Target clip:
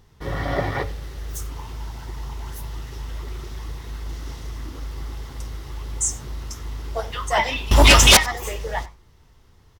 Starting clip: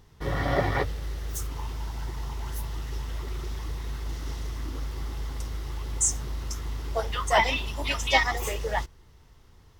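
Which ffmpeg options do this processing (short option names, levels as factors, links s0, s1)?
-filter_complex "[0:a]flanger=delay=8:depth=4.3:regen=-81:speed=1.1:shape=sinusoidal,asettb=1/sr,asplit=3[s0][s1][s2];[s0]atrim=end=7.714[s3];[s1]atrim=start=7.71:end=8.17,asetpts=PTS-STARTPTS,afade=t=in:d=0.004:c=qsin,afade=t=out:st=0.456:d=0.004:c=qsin,aeval=exprs='0.266*sin(PI/2*6.31*val(0)/0.266)':c=same[s4];[s2]atrim=start=8.166[s5];[s3][s4]acrossfade=d=0.004:c1=hsin:c2=qsin[s6];[s6][s5]acrossfade=d=0.004:c1=qsin:c2=hsin,asplit=2[s7][s8];[s8]adelay=93.29,volume=0.0891,highshelf=f=4000:g=-2.1[s9];[s7][s9]amix=inputs=2:normalize=0,volume=1.88"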